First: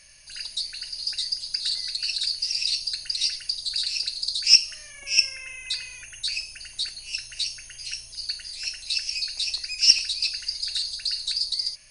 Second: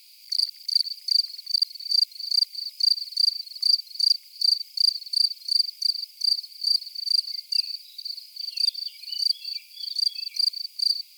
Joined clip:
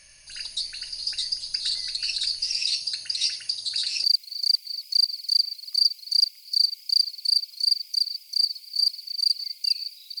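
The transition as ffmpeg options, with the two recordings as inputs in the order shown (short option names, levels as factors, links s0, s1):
-filter_complex "[0:a]asettb=1/sr,asplit=3[s0][s1][s2];[s0]atrim=end=2.564[s3];[s1]atrim=start=2.56:end=4.04,asetpts=PTS-STARTPTS,afade=t=in:d=0.004:c=qsin,afade=t=out:st=1.476:d=0.004:c=qsin,highpass=100[s4];[s2]atrim=start=4.036[s5];[s3][s4]acrossfade=d=0.004:c1=hsin:c2=qsin[s6];[s6][s5]acrossfade=d=0.004:c1=qsin:c2=hsin,apad=whole_dur=10.2,atrim=end=10.2,atrim=end=4.042[s7];[1:a]atrim=start=1.918:end=8.08[s8];[s7][s8]acrossfade=d=0.004:c1=hsin:c2=hsin"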